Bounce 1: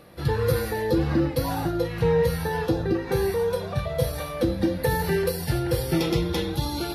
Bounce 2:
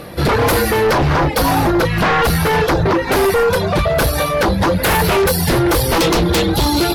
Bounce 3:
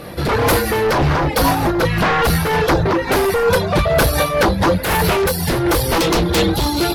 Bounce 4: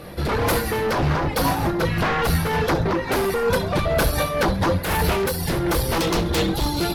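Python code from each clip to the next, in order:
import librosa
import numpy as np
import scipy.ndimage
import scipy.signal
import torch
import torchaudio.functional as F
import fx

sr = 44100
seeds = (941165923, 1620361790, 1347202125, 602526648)

y1 = fx.dereverb_blind(x, sr, rt60_s=0.5)
y1 = fx.fold_sine(y1, sr, drive_db=14, ceiling_db=-10.5)
y2 = fx.rider(y1, sr, range_db=10, speed_s=0.5)
y2 = fx.am_noise(y2, sr, seeds[0], hz=5.7, depth_pct=60)
y2 = y2 * librosa.db_to_amplitude(1.5)
y3 = fx.octave_divider(y2, sr, octaves=1, level_db=-4.0)
y3 = fx.echo_feedback(y3, sr, ms=67, feedback_pct=39, wet_db=-15.0)
y3 = y3 * librosa.db_to_amplitude(-6.0)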